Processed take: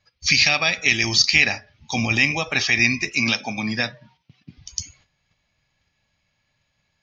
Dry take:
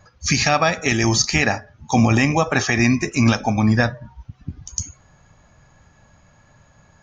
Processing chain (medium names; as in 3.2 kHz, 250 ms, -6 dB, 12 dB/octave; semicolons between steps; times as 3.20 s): 3.13–4.58 s: high-pass 130 Hz 24 dB/octave; gate -48 dBFS, range -12 dB; high-order bell 3.3 kHz +15 dB; trim -9 dB